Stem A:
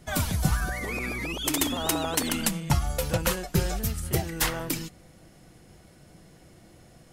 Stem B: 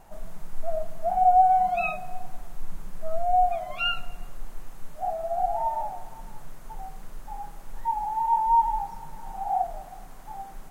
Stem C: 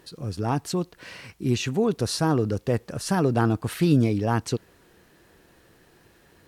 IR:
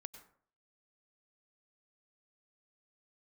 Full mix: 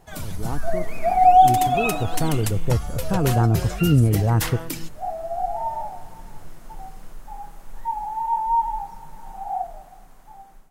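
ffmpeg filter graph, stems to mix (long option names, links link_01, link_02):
-filter_complex "[0:a]volume=-8dB[link_01];[1:a]dynaudnorm=framelen=220:gausssize=3:maxgain=8.5dB,volume=-3.5dB,afade=type=out:start_time=2.4:duration=0.63:silence=0.266073[link_02];[2:a]lowpass=1200,asubboost=boost=5.5:cutoff=110,volume=-5.5dB,asplit=2[link_03][link_04];[link_04]apad=whole_len=472080[link_05];[link_02][link_05]sidechaincompress=threshold=-27dB:ratio=8:attack=7.6:release=420[link_06];[link_01][link_06][link_03]amix=inputs=3:normalize=0,dynaudnorm=framelen=400:gausssize=7:maxgain=7dB"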